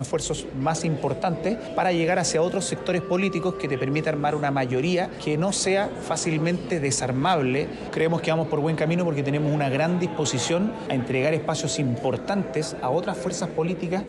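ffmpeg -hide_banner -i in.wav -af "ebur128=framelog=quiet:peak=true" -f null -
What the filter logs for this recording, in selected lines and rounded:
Integrated loudness:
  I:         -24.5 LUFS
  Threshold: -34.5 LUFS
Loudness range:
  LRA:         1.2 LU
  Threshold: -44.3 LUFS
  LRA low:   -25.1 LUFS
  LRA high:  -23.8 LUFS
True peak:
  Peak:      -10.5 dBFS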